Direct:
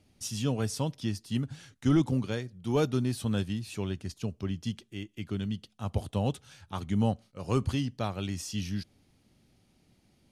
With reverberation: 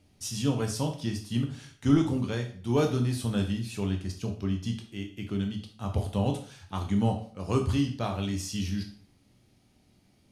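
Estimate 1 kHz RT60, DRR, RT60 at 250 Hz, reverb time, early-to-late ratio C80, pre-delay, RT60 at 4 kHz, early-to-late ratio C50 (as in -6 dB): 0.45 s, 3.0 dB, 0.50 s, 0.45 s, 13.0 dB, 5 ms, 0.45 s, 9.0 dB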